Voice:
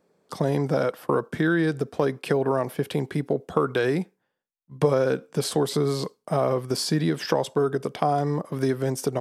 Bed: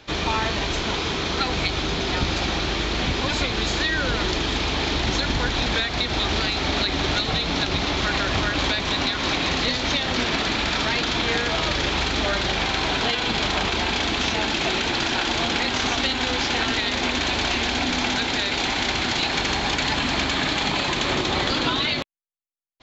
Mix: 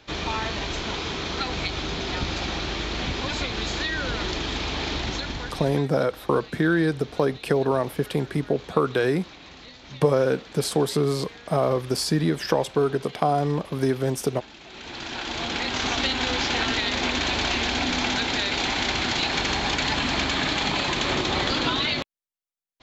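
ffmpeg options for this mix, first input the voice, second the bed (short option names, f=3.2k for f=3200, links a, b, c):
-filter_complex "[0:a]adelay=5200,volume=1dB[a];[1:a]volume=16dB,afade=t=out:st=4.95:d=0.91:silence=0.133352,afade=t=in:st=14.68:d=1.37:silence=0.0944061[b];[a][b]amix=inputs=2:normalize=0"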